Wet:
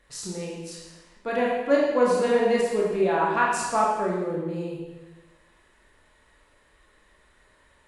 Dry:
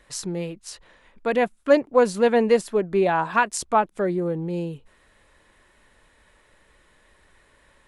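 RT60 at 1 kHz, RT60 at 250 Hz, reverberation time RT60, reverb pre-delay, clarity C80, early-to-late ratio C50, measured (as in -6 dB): 1.2 s, 1.2 s, 1.2 s, 24 ms, 3.0 dB, 0.5 dB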